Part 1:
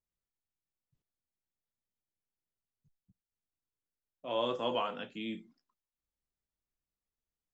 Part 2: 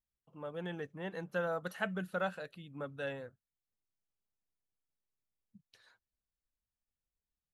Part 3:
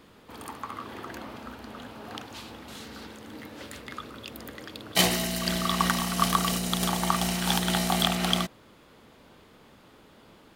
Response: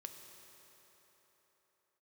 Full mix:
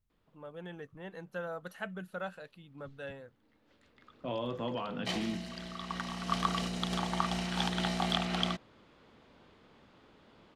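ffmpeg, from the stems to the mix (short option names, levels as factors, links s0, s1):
-filter_complex "[0:a]bass=f=250:g=15,treble=f=4000:g=-6,acompressor=threshold=0.0158:ratio=6,volume=1.41[s0];[1:a]volume=0.631,asplit=2[s1][s2];[2:a]lowpass=4900,adelay=100,volume=0.501,afade=t=in:st=1.35:d=0.24:silence=0.354813,afade=t=in:st=5.95:d=0.55:silence=0.446684[s3];[s2]apad=whole_len=469971[s4];[s3][s4]sidechaincompress=threshold=0.00126:ratio=12:attack=7.6:release=1130[s5];[s0][s1][s5]amix=inputs=3:normalize=0"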